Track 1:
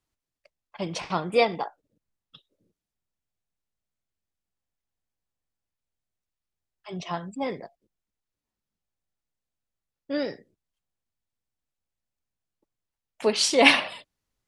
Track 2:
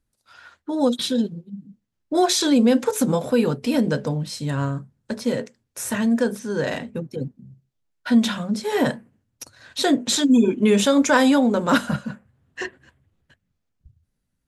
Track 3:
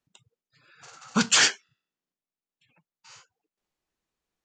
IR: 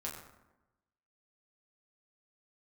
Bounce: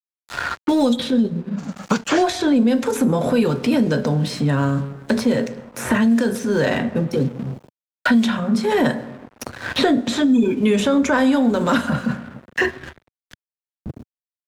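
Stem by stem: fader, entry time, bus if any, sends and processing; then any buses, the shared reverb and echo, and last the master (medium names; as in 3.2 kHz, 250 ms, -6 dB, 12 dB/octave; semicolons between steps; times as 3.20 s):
mute
-0.5 dB, 0.00 s, send -8 dB, tone controls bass +2 dB, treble -6 dB; transient shaper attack -4 dB, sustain +5 dB
-9.5 dB, 0.75 s, no send, peaking EQ 460 Hz +11 dB 2.8 oct; random-step tremolo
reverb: on, RT60 1.0 s, pre-delay 6 ms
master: crossover distortion -48.5 dBFS; three bands compressed up and down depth 100%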